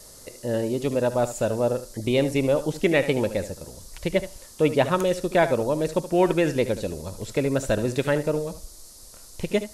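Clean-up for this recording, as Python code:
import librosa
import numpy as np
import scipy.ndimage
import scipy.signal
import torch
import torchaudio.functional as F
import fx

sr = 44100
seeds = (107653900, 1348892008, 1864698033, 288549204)

y = fx.noise_reduce(x, sr, print_start_s=8.85, print_end_s=9.35, reduce_db=23.0)
y = fx.fix_echo_inverse(y, sr, delay_ms=74, level_db=-13.0)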